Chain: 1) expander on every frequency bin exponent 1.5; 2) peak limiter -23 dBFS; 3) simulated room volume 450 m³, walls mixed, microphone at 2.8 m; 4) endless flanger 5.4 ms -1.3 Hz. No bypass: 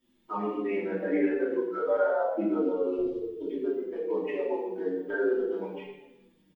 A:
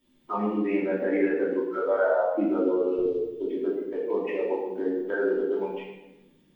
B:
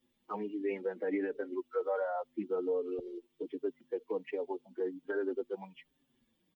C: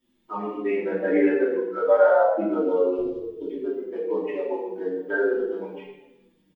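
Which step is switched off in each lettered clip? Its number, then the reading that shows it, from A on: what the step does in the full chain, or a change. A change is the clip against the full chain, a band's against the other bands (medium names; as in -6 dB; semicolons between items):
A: 4, momentary loudness spread change -2 LU; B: 3, crest factor change -1.5 dB; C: 2, mean gain reduction 2.5 dB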